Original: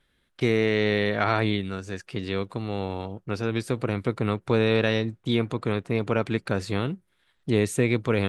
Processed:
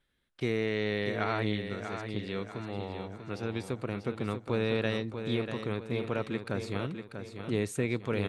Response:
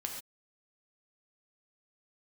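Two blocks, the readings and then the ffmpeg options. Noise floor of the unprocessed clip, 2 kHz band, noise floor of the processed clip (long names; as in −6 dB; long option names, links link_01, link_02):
−70 dBFS, −7.5 dB, −56 dBFS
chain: -af "aecho=1:1:641|1282|1923|2564|3205:0.398|0.171|0.0736|0.0317|0.0136,volume=-8dB"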